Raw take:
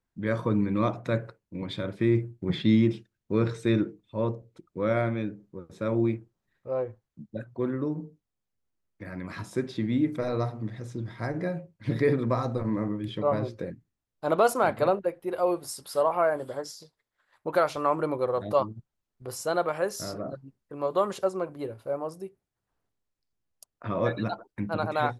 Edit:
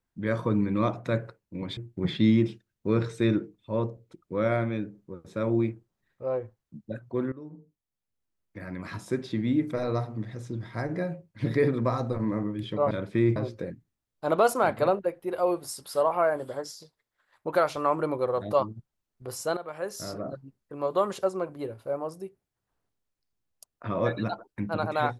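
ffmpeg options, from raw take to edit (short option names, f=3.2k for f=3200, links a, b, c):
-filter_complex "[0:a]asplit=6[a][b][c][d][e][f];[a]atrim=end=1.772[g];[b]atrim=start=2.218:end=7.77,asetpts=PTS-STARTPTS,afade=t=out:st=5.548:d=0.004:c=hsin:silence=0.149624[h];[c]atrim=start=7.77:end=13.362,asetpts=PTS-STARTPTS,afade=t=in:d=1.27:silence=0.149624[i];[d]atrim=start=1.768:end=2.222[j];[e]atrim=start=13.358:end=19.57,asetpts=PTS-STARTPTS,afade=t=out:st=6.208:d=0.004:c=hsin:silence=0.16788[k];[f]atrim=start=19.57,asetpts=PTS-STARTPTS,afade=t=in:d=0.59:silence=0.16788[l];[h][i]concat=n=2:v=0:a=1[m];[g][m]acrossfade=d=0.004:c1=hsin:c2=hsin[n];[n][j]acrossfade=d=0.004:c1=hsin:c2=hsin[o];[k][l]concat=n=2:v=0:a=1[p];[o][p]acrossfade=d=0.004:c1=hsin:c2=hsin"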